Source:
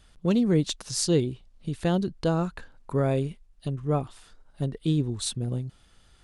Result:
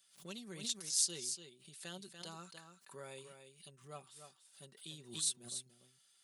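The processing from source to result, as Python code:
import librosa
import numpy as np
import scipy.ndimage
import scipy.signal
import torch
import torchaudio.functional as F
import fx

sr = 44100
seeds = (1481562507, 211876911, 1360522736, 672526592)

p1 = scipy.signal.sosfilt(scipy.signal.butter(4, 110.0, 'highpass', fs=sr, output='sos'), x)
p2 = F.preemphasis(torch.from_numpy(p1), 0.97).numpy()
p3 = p2 + 0.56 * np.pad(p2, (int(5.2 * sr / 1000.0), 0))[:len(p2)]
p4 = p3 + fx.echo_single(p3, sr, ms=290, db=-8.5, dry=0)
p5 = fx.pre_swell(p4, sr, db_per_s=130.0)
y = p5 * librosa.db_to_amplitude(-4.0)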